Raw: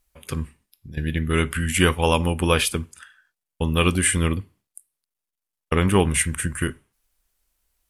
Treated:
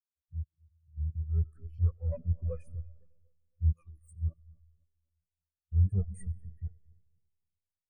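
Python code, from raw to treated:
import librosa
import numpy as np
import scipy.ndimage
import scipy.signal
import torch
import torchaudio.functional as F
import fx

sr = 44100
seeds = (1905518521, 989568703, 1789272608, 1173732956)

y = fx.lower_of_two(x, sr, delay_ms=1.6)
y = fx.dereverb_blind(y, sr, rt60_s=1.4)
y = fx.pre_emphasis(y, sr, coefficient=0.8, at=(3.72, 4.22))
y = fx.dereverb_blind(y, sr, rt60_s=1.1)
y = fx.peak_eq(y, sr, hz=81.0, db=5.5, octaves=2.4)
y = fx.transient(y, sr, attack_db=-9, sustain_db=3)
y = fx.env_phaser(y, sr, low_hz=280.0, high_hz=3500.0, full_db=-22.5)
y = y * (1.0 - 0.35 / 2.0 + 0.35 / 2.0 * np.cos(2.0 * np.pi * 1.3 * (np.arange(len(y)) / sr)))
y = 10.0 ** (-19.0 / 20.0) * np.tanh(y / 10.0 ** (-19.0 / 20.0))
y = fx.echo_tape(y, sr, ms=254, feedback_pct=66, wet_db=-7, lp_hz=1200.0, drive_db=22.0, wow_cents=6)
y = fx.rev_freeverb(y, sr, rt60_s=3.6, hf_ratio=0.8, predelay_ms=45, drr_db=8.0)
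y = fx.spectral_expand(y, sr, expansion=2.5)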